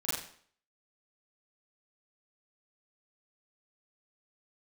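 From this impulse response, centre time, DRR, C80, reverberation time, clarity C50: 61 ms, -10.5 dB, 4.5 dB, 0.55 s, 1.5 dB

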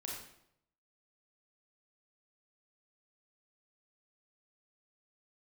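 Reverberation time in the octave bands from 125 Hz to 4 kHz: 0.90, 0.80, 0.80, 0.70, 0.65, 0.60 s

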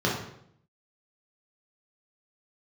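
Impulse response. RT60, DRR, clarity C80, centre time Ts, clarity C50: 0.70 s, -4.5 dB, 7.5 dB, 43 ms, 3.5 dB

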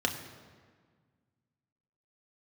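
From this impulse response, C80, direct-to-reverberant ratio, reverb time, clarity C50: 10.0 dB, 2.5 dB, 1.7 s, 9.0 dB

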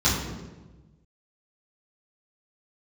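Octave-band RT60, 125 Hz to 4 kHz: 1.7, 1.5, 1.3, 1.1, 0.95, 0.80 s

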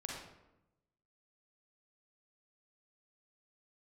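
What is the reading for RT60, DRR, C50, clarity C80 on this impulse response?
0.90 s, -2.5 dB, 0.0 dB, 3.5 dB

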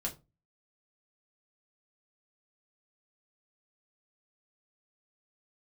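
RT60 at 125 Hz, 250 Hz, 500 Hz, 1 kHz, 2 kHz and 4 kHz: 0.45, 0.35, 0.30, 0.25, 0.20, 0.20 s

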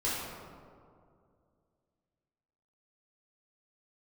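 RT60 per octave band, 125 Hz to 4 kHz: 2.7, 2.6, 2.5, 2.1, 1.4, 0.95 s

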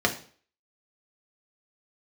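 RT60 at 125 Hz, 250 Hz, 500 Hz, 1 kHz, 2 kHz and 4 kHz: 0.45, 0.45, 0.45, 0.45, 0.45, 0.45 s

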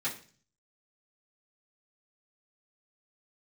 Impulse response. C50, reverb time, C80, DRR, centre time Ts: 10.5 dB, 0.40 s, 15.0 dB, -10.0 dB, 19 ms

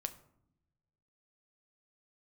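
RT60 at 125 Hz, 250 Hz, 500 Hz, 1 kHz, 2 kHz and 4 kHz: 1.7, 1.3, 0.80, 0.70, 0.50, 0.35 s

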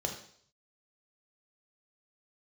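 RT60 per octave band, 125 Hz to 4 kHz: 0.80, 0.55, 0.60, 0.55, 0.55, 0.65 s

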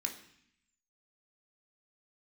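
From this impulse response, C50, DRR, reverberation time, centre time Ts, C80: 9.5 dB, 2.0 dB, 0.65 s, 17 ms, 13.0 dB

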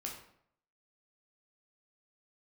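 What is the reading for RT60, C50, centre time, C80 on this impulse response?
0.65 s, 5.5 dB, 31 ms, 9.0 dB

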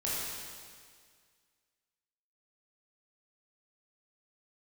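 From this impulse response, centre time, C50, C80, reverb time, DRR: 0.135 s, -3.5 dB, -1.0 dB, 1.9 s, -8.0 dB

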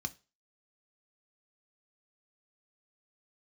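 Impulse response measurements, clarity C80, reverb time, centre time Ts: 28.0 dB, 0.30 s, 3 ms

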